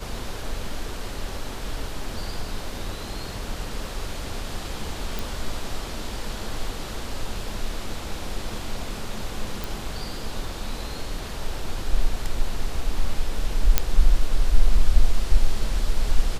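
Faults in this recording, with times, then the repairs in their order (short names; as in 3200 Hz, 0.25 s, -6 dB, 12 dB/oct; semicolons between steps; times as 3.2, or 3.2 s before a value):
5.19 pop
9.64 pop
13.78 pop -1 dBFS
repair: de-click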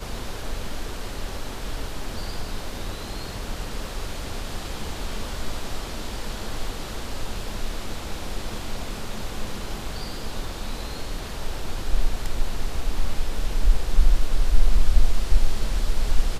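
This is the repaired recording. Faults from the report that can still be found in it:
none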